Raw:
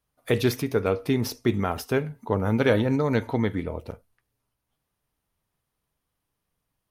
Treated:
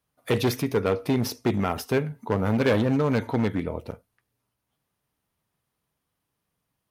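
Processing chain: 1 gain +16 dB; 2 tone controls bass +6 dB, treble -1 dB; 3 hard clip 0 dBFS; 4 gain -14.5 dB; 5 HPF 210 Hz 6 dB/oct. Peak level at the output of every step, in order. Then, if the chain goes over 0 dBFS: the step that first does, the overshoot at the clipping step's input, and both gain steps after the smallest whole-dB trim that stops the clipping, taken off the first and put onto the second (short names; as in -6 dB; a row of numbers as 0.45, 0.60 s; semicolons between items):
+7.5, +9.5, 0.0, -14.5, -10.0 dBFS; step 1, 9.5 dB; step 1 +6 dB, step 4 -4.5 dB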